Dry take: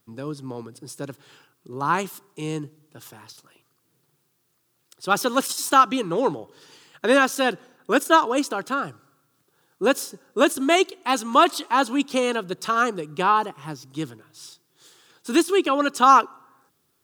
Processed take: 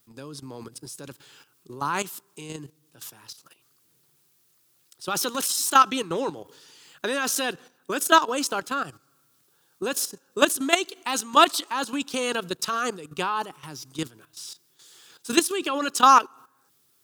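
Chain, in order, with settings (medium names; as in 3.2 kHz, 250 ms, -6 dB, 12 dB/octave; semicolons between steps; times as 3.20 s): treble shelf 2.2 kHz +9.5 dB; level held to a coarse grid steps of 13 dB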